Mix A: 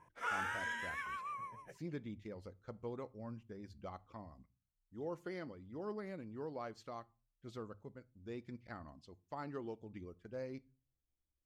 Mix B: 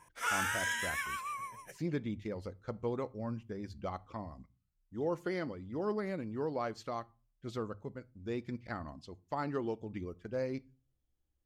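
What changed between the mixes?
speech +8.5 dB; background: remove low-pass 1 kHz 6 dB/octave

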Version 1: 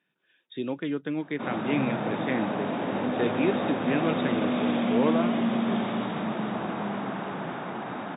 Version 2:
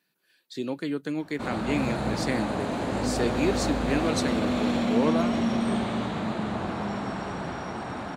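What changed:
background: remove high-pass 140 Hz 24 dB/octave; master: remove brick-wall FIR low-pass 3.8 kHz

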